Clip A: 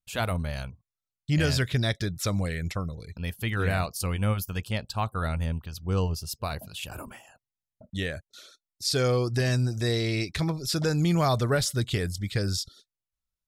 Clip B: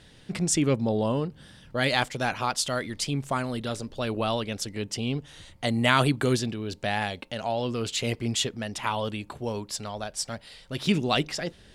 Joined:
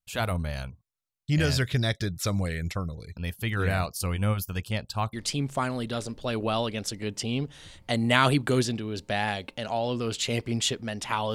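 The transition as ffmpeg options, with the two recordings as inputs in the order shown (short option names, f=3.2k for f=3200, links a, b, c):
-filter_complex "[0:a]apad=whole_dur=11.34,atrim=end=11.34,atrim=end=5.132[a];[1:a]atrim=start=2.868:end=9.08[b];[a][b]acrossfade=d=0.004:c1=hsin:c2=hsin"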